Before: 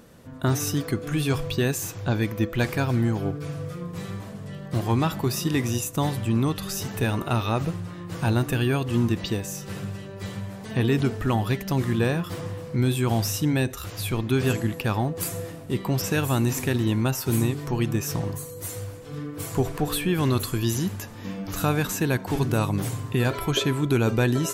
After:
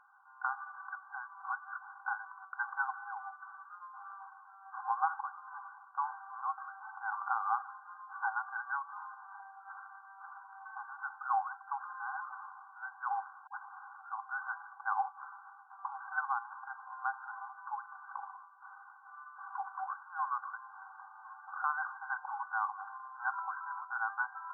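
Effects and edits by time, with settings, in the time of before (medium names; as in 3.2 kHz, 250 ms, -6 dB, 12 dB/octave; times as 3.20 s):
1.03–1.82 s: reverse
13.47 s: tape start 0.72 s
whole clip: comb 2.7 ms, depth 55%; FFT band-pass 760–1600 Hz; trim -2 dB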